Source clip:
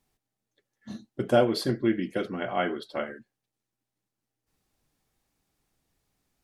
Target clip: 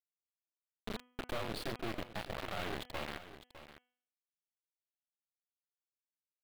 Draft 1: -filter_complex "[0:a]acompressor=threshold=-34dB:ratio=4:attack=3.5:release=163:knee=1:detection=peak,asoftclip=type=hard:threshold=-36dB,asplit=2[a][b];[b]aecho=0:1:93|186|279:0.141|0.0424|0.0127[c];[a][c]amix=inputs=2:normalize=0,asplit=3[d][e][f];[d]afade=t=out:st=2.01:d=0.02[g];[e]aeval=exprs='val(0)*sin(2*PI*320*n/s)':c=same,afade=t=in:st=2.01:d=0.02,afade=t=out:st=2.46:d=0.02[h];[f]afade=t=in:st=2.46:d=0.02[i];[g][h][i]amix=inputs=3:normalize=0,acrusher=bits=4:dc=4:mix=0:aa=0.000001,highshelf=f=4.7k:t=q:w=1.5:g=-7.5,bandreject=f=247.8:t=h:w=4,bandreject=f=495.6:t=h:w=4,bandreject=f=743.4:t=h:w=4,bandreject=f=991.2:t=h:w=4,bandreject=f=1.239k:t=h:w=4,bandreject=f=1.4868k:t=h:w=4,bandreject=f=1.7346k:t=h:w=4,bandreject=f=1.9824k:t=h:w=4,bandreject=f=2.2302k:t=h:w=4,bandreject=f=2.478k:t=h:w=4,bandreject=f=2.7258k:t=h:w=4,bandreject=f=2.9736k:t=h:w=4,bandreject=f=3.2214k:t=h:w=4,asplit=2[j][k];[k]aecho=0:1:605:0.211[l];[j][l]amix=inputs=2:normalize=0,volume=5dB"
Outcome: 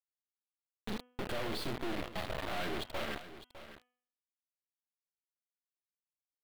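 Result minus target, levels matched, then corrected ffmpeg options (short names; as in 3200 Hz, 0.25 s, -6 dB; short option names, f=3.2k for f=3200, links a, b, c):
compressor: peak gain reduction -5 dB
-filter_complex "[0:a]acompressor=threshold=-41dB:ratio=4:attack=3.5:release=163:knee=1:detection=peak,asoftclip=type=hard:threshold=-36dB,asplit=2[a][b];[b]aecho=0:1:93|186|279:0.141|0.0424|0.0127[c];[a][c]amix=inputs=2:normalize=0,asplit=3[d][e][f];[d]afade=t=out:st=2.01:d=0.02[g];[e]aeval=exprs='val(0)*sin(2*PI*320*n/s)':c=same,afade=t=in:st=2.01:d=0.02,afade=t=out:st=2.46:d=0.02[h];[f]afade=t=in:st=2.46:d=0.02[i];[g][h][i]amix=inputs=3:normalize=0,acrusher=bits=4:dc=4:mix=0:aa=0.000001,highshelf=f=4.7k:t=q:w=1.5:g=-7.5,bandreject=f=247.8:t=h:w=4,bandreject=f=495.6:t=h:w=4,bandreject=f=743.4:t=h:w=4,bandreject=f=991.2:t=h:w=4,bandreject=f=1.239k:t=h:w=4,bandreject=f=1.4868k:t=h:w=4,bandreject=f=1.7346k:t=h:w=4,bandreject=f=1.9824k:t=h:w=4,bandreject=f=2.2302k:t=h:w=4,bandreject=f=2.478k:t=h:w=4,bandreject=f=2.7258k:t=h:w=4,bandreject=f=2.9736k:t=h:w=4,bandreject=f=3.2214k:t=h:w=4,asplit=2[j][k];[k]aecho=0:1:605:0.211[l];[j][l]amix=inputs=2:normalize=0,volume=5dB"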